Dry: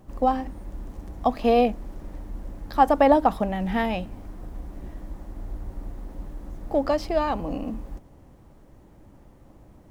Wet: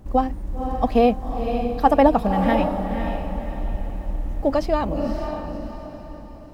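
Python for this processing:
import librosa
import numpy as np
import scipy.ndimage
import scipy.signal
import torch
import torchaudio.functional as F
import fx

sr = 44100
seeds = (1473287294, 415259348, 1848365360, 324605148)

p1 = fx.low_shelf(x, sr, hz=220.0, db=6.0)
p2 = fx.stretch_vocoder(p1, sr, factor=0.66)
p3 = p2 + fx.echo_diffused(p2, sr, ms=531, feedback_pct=41, wet_db=-6.5, dry=0)
y = F.gain(torch.from_numpy(p3), 2.0).numpy()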